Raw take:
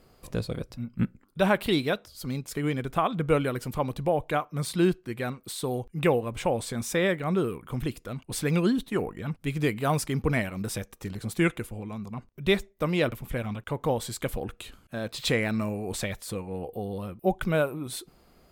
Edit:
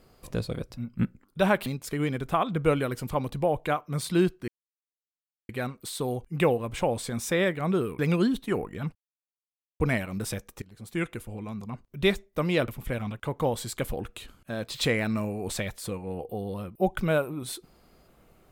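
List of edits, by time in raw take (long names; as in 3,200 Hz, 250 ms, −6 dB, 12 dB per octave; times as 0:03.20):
0:01.66–0:02.30: remove
0:05.12: splice in silence 1.01 s
0:07.62–0:08.43: remove
0:09.39–0:10.24: silence
0:11.06–0:11.86: fade in, from −23 dB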